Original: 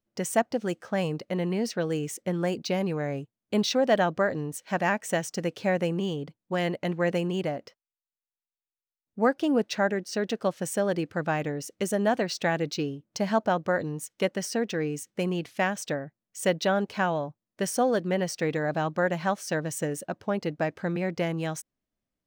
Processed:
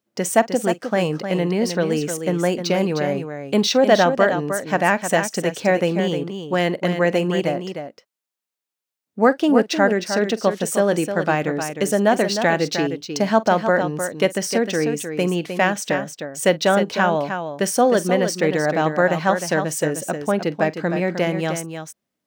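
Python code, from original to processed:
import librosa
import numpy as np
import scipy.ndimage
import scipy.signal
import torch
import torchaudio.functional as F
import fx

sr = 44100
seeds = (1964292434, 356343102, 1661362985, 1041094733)

p1 = scipy.signal.sosfilt(scipy.signal.butter(2, 160.0, 'highpass', fs=sr, output='sos'), x)
p2 = p1 + fx.echo_multitap(p1, sr, ms=(45, 308), db=(-19.5, -8.0), dry=0)
y = p2 * 10.0 ** (8.0 / 20.0)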